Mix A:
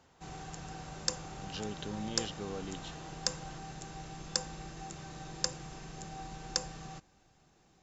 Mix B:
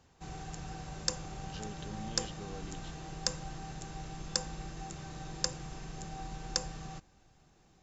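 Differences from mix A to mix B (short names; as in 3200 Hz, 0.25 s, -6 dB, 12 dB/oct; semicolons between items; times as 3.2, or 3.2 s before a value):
speech -6.5 dB; master: add low shelf 100 Hz +7 dB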